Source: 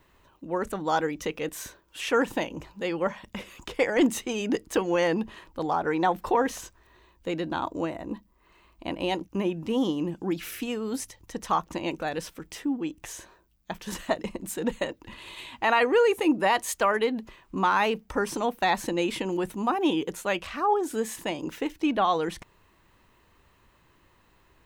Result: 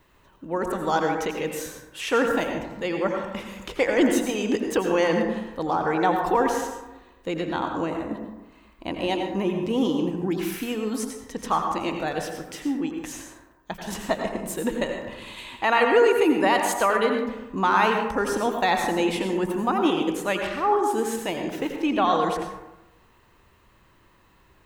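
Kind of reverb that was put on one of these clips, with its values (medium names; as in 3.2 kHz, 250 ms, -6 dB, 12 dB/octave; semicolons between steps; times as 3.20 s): plate-style reverb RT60 1 s, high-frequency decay 0.4×, pre-delay 75 ms, DRR 3 dB; trim +1.5 dB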